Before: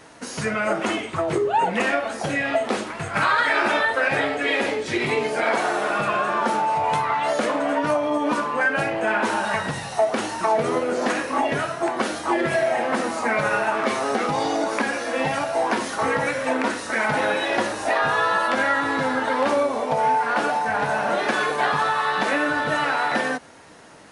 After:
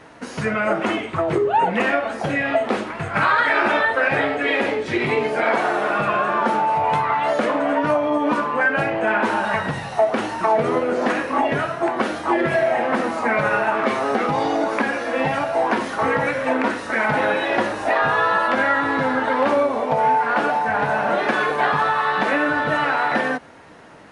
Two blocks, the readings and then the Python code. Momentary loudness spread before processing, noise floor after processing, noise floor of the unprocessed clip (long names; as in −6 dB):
4 LU, −32 dBFS, −34 dBFS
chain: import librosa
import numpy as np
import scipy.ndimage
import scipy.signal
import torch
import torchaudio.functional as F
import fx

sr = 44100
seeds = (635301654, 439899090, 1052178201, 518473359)

y = fx.bass_treble(x, sr, bass_db=1, treble_db=-11)
y = F.gain(torch.from_numpy(y), 2.5).numpy()